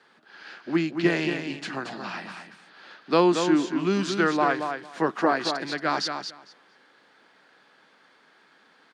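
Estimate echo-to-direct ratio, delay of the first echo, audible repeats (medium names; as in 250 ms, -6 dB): -7.0 dB, 227 ms, 2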